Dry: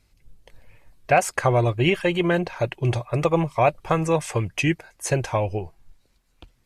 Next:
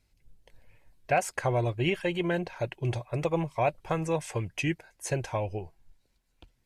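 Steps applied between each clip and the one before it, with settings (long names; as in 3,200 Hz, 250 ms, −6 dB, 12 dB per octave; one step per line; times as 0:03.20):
notch filter 1,200 Hz, Q 8.3
level −7.5 dB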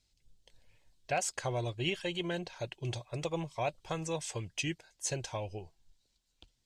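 flat-topped bell 5,000 Hz +11 dB
level −7.5 dB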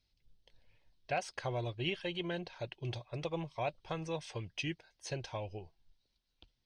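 Savitzky-Golay smoothing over 15 samples
level −2.5 dB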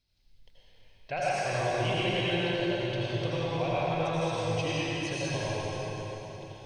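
convolution reverb RT60 4.4 s, pre-delay 71 ms, DRR −9.5 dB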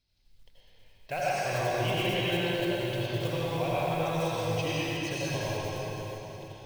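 one scale factor per block 5 bits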